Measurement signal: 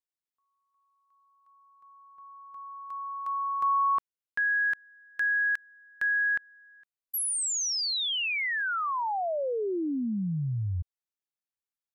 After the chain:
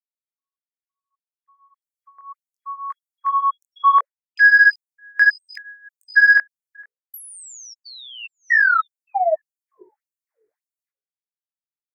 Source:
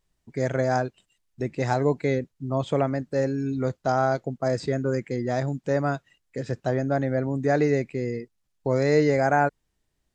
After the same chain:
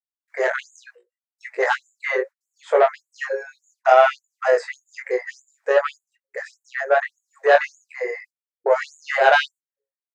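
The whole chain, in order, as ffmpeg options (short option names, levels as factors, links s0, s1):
-filter_complex "[0:a]acrossover=split=200|2800[s0][s1][s2];[s2]acompressor=threshold=0.00708:ratio=6:attack=52:release=65:knee=1:detection=peak[s3];[s0][s1][s3]amix=inputs=3:normalize=0,highshelf=f=2400:t=q:w=3:g=-8.5,asplit=2[s4][s5];[s5]aeval=exprs='0.422*sin(PI/2*2.24*val(0)/0.422)':c=same,volume=0.562[s6];[s4][s6]amix=inputs=2:normalize=0,agate=range=0.0224:threshold=0.00631:ratio=3:release=90:detection=peak,equalizer=f=630:w=6.6:g=3,bandreject=f=60:t=h:w=6,bandreject=f=120:t=h:w=6,bandreject=f=180:t=h:w=6,bandreject=f=240:t=h:w=6,bandreject=f=300:t=h:w=6,bandreject=f=360:t=h:w=6,bandreject=f=420:t=h:w=6,bandreject=f=480:t=h:w=6,bandreject=f=540:t=h:w=6,flanger=delay=19:depth=4.9:speed=0.69,afftfilt=real='re*gte(b*sr/1024,350*pow(6700/350,0.5+0.5*sin(2*PI*1.7*pts/sr)))':imag='im*gte(b*sr/1024,350*pow(6700/350,0.5+0.5*sin(2*PI*1.7*pts/sr)))':win_size=1024:overlap=0.75,volume=1.5"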